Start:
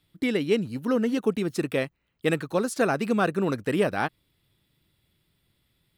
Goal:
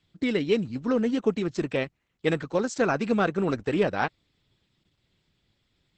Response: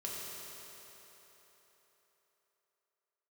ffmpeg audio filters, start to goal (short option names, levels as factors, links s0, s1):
-ar 48000 -c:a libopus -b:a 10k